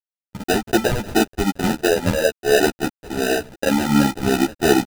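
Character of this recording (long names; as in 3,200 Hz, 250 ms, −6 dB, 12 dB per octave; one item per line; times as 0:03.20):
a quantiser's noise floor 6 bits, dither none
phaser sweep stages 6, 2.8 Hz, lowest notch 400–1,100 Hz
aliases and images of a low sample rate 1,100 Hz, jitter 0%
a shimmering, thickened sound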